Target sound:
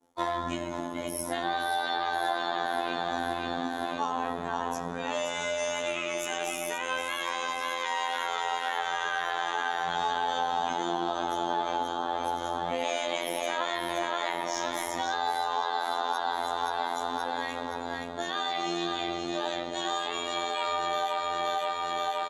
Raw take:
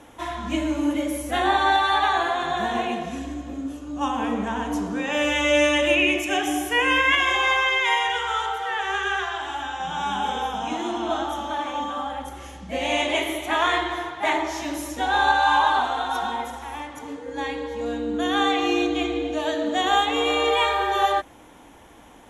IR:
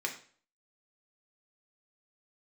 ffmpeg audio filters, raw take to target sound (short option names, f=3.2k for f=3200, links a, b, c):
-filter_complex "[0:a]afftdn=nr=13:nf=-41,bandreject=f=50:t=h:w=6,bandreject=f=100:t=h:w=6,bandreject=f=150:t=h:w=6,bandreject=f=200:t=h:w=6,bandreject=f=250:t=h:w=6,bandreject=f=300:t=h:w=6,aecho=1:1:524|1048|1572|2096|2620|3144|3668:0.531|0.292|0.161|0.0883|0.0486|0.0267|0.0147,asplit=2[a][b];[b]alimiter=limit=-18dB:level=0:latency=1:release=50,volume=2.5dB[c];[a][c]amix=inputs=2:normalize=0,acompressor=threshold=-26dB:ratio=8,asplit=4[d][e][f][g];[e]asetrate=22050,aresample=44100,atempo=2,volume=-12dB[h];[f]asetrate=35002,aresample=44100,atempo=1.25992,volume=-13dB[i];[g]asetrate=55563,aresample=44100,atempo=0.793701,volume=-17dB[j];[d][h][i][j]amix=inputs=4:normalize=0,agate=range=-33dB:threshold=-34dB:ratio=3:detection=peak,aexciter=amount=7.5:drive=3.3:freq=3.9k,afftfilt=real='hypot(re,im)*cos(PI*b)':imag='0':win_size=2048:overlap=0.75,asplit=2[k][l];[l]highpass=f=720:p=1,volume=9dB,asoftclip=type=tanh:threshold=-2.5dB[m];[k][m]amix=inputs=2:normalize=0,lowpass=f=1.3k:p=1,volume=-6dB"